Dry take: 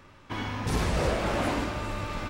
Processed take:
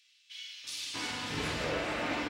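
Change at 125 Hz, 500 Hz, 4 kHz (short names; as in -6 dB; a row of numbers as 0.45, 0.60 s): -13.0, -7.0, +2.0 dB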